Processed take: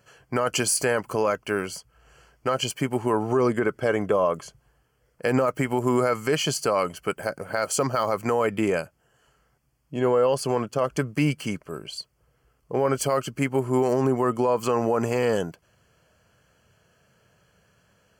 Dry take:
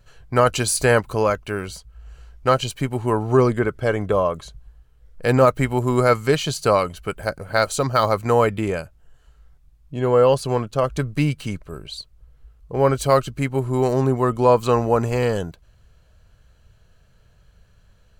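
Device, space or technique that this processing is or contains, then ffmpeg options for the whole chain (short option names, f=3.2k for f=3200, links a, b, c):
PA system with an anti-feedback notch: -af "highpass=180,asuperstop=centerf=3800:order=4:qfactor=3.9,alimiter=limit=-14dB:level=0:latency=1:release=65,volume=1.5dB"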